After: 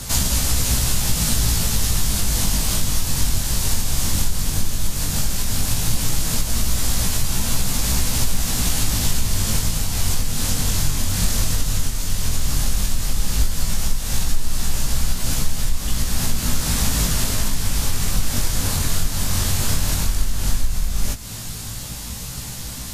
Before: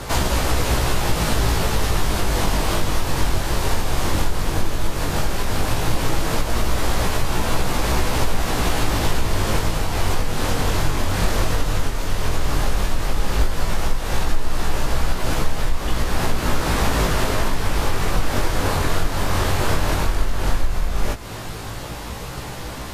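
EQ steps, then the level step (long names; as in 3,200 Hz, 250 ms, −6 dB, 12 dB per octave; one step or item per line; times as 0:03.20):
drawn EQ curve 240 Hz 0 dB, 330 Hz −11 dB, 1,100 Hz −9 dB, 2,300 Hz −4 dB, 7,000 Hz +9 dB
0.0 dB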